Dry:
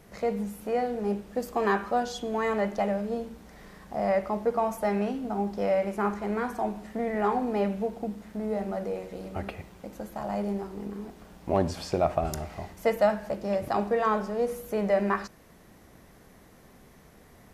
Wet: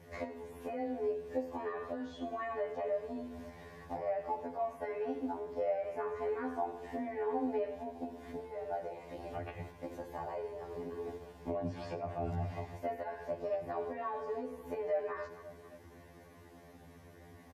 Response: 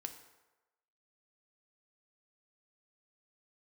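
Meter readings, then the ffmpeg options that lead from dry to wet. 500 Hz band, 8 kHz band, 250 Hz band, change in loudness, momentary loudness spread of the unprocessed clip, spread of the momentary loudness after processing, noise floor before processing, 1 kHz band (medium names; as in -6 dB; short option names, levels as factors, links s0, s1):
-9.0 dB, under -15 dB, -11.5 dB, -10.0 dB, 12 LU, 16 LU, -55 dBFS, -10.5 dB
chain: -filter_complex "[0:a]afreqshift=14,asplit=2[s0][s1];[s1]adelay=268,lowpass=f=2000:p=1,volume=0.0631,asplit=2[s2][s3];[s3]adelay=268,lowpass=f=2000:p=1,volume=0.51,asplit=2[s4][s5];[s5]adelay=268,lowpass=f=2000:p=1,volume=0.51[s6];[s0][s2][s4][s6]amix=inputs=4:normalize=0,acrossover=split=2900[s7][s8];[s8]acompressor=threshold=0.00158:ratio=4:attack=1:release=60[s9];[s7][s9]amix=inputs=2:normalize=0,highpass=60,agate=range=0.447:threshold=0.00501:ratio=16:detection=peak,equalizer=f=200:w=5.8:g=-10.5,alimiter=limit=0.0944:level=0:latency=1:release=17,acompressor=threshold=0.00501:ratio=3,highshelf=f=3500:g=-8.5,bandreject=f=1300:w=5.7,asplit=2[s10][s11];[1:a]atrim=start_sample=2205[s12];[s11][s12]afir=irnorm=-1:irlink=0,volume=2.37[s13];[s10][s13]amix=inputs=2:normalize=0,afftfilt=real='re*2*eq(mod(b,4),0)':imag='im*2*eq(mod(b,4),0)':win_size=2048:overlap=0.75,volume=1.12"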